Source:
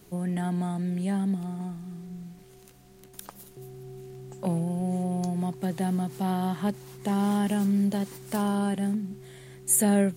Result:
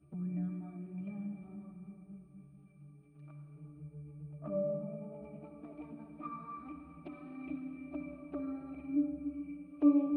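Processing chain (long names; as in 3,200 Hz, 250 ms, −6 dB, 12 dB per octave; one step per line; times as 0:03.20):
pitch glide at a constant tempo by +6 semitones starting unshifted
parametric band 2,100 Hz +3.5 dB 0.39 octaves
mains-hum notches 50/100/150 Hz
in parallel at −1 dB: brickwall limiter −23.5 dBFS, peak gain reduction 11.5 dB
on the sum: resonances in every octave D, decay 0.5 s
flanger swept by the level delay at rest 10.6 ms, full sweep at −41 dBFS
steady tone 8,900 Hz −70 dBFS
high-frequency loss of the air 220 metres
on a send at −5 dB: convolution reverb RT60 2.8 s, pre-delay 52 ms
on the sum: level +8 dB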